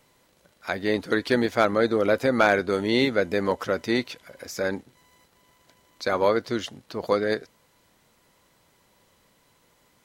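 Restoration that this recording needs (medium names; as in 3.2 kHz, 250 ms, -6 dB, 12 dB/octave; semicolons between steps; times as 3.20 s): clip repair -7 dBFS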